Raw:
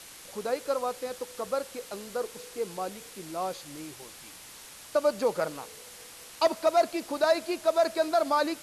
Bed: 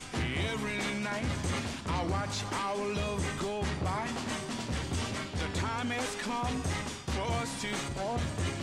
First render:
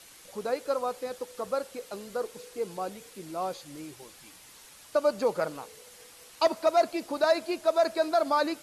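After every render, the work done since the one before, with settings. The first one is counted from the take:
broadband denoise 6 dB, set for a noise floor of −48 dBFS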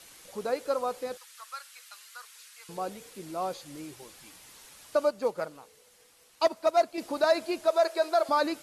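0:01.17–0:02.69: high-pass filter 1,300 Hz 24 dB per octave
0:05.05–0:06.98: expander for the loud parts, over −36 dBFS
0:07.68–0:08.29: linear-phase brick-wall high-pass 320 Hz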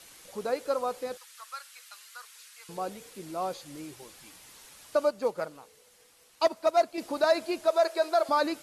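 no processing that can be heard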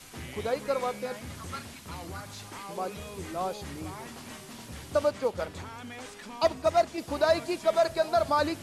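mix in bed −9 dB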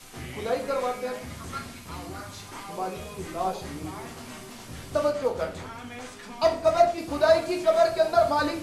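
rectangular room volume 51 cubic metres, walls mixed, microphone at 0.5 metres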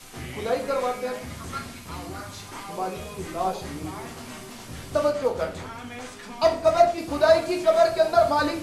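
level +2 dB

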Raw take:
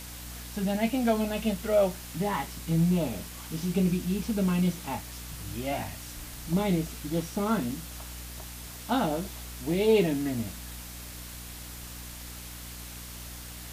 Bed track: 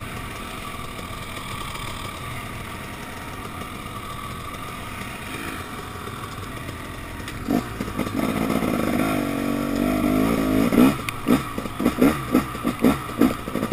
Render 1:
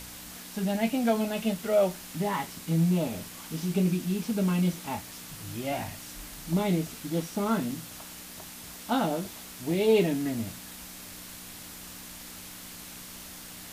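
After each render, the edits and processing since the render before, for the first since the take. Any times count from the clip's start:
hum removal 60 Hz, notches 2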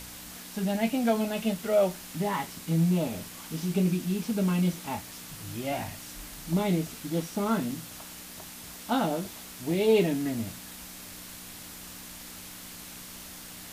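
no processing that can be heard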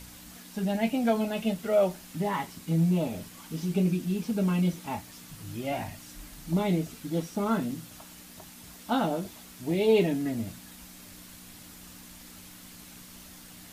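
broadband denoise 6 dB, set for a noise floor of −44 dBFS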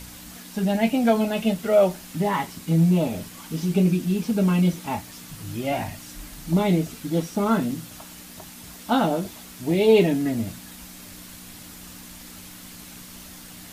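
level +6 dB

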